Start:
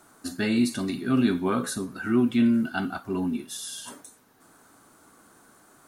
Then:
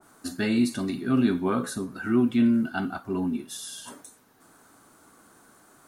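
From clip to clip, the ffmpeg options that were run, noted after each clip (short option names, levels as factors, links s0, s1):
-af "adynamicequalizer=threshold=0.00501:dfrequency=1700:dqfactor=0.7:tfrequency=1700:tqfactor=0.7:attack=5:release=100:ratio=0.375:range=2:mode=cutabove:tftype=highshelf"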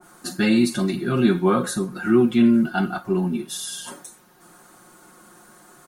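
-af "aecho=1:1:5.6:0.91,volume=1.58"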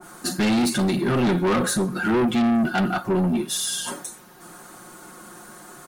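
-af "asoftclip=type=tanh:threshold=0.0631,volume=2.11"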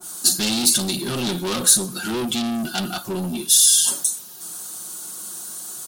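-af "aexciter=amount=4.7:drive=8.2:freq=3000,volume=0.562"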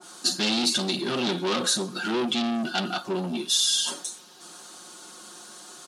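-af "highpass=230,lowpass=4300"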